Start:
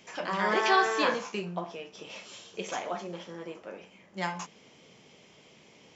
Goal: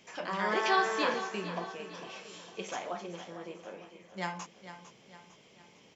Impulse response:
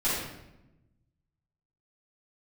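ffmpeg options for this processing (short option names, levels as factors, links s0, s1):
-af "aecho=1:1:454|908|1362|1816|2270:0.251|0.116|0.0532|0.0244|0.0112,volume=0.668"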